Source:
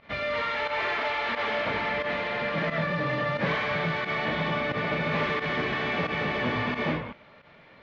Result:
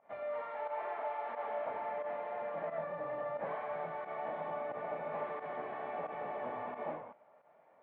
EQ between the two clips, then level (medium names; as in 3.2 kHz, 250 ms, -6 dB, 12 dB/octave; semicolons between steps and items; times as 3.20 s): band-pass filter 730 Hz, Q 2.9; distance through air 320 m; -2.0 dB